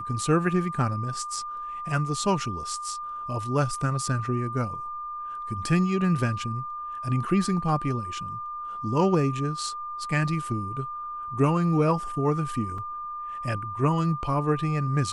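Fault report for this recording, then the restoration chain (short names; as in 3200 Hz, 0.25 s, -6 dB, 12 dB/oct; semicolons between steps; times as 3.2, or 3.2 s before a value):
tone 1200 Hz -32 dBFS
12.78 gap 3.4 ms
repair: notch 1200 Hz, Q 30; interpolate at 12.78, 3.4 ms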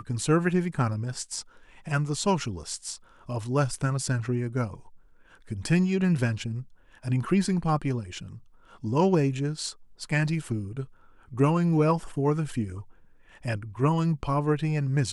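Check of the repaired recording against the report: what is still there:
none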